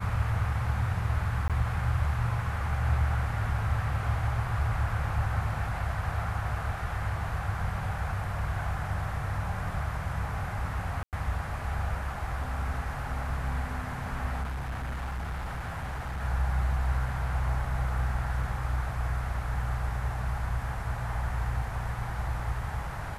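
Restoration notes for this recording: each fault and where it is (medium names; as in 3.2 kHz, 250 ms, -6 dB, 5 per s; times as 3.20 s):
1.48–1.50 s: dropout 17 ms
11.03–11.13 s: dropout 98 ms
14.42–16.21 s: clipped -30.5 dBFS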